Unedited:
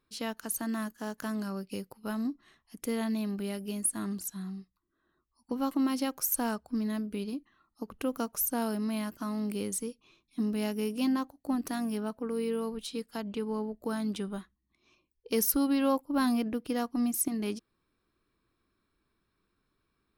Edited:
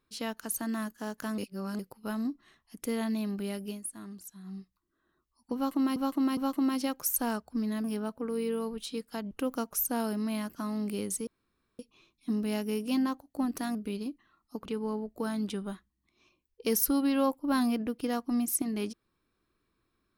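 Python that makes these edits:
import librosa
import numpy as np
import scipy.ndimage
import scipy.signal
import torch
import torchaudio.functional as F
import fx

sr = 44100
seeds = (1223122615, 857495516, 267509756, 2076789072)

y = fx.edit(x, sr, fx.reverse_span(start_s=1.38, length_s=0.41),
    fx.fade_down_up(start_s=3.67, length_s=0.89, db=-9.5, fade_s=0.13),
    fx.repeat(start_s=5.55, length_s=0.41, count=3),
    fx.swap(start_s=7.02, length_s=0.91, other_s=11.85, other_length_s=1.47),
    fx.insert_room_tone(at_s=9.89, length_s=0.52), tone=tone)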